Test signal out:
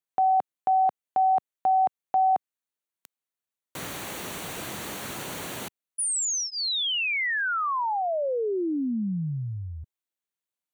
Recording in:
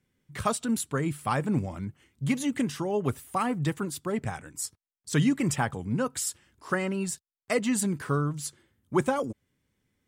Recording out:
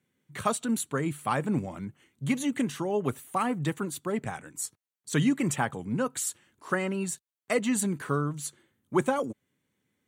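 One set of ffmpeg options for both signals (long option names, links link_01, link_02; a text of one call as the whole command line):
ffmpeg -i in.wav -af "highpass=140,bandreject=frequency=5100:width=5" out.wav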